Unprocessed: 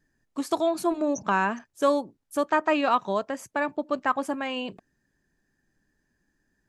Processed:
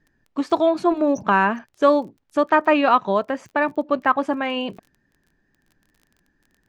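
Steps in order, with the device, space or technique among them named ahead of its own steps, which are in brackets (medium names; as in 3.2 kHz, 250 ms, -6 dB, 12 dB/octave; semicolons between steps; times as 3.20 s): lo-fi chain (low-pass 3.5 kHz 12 dB/octave; wow and flutter 25 cents; crackle 21 per s -47 dBFS); trim +6.5 dB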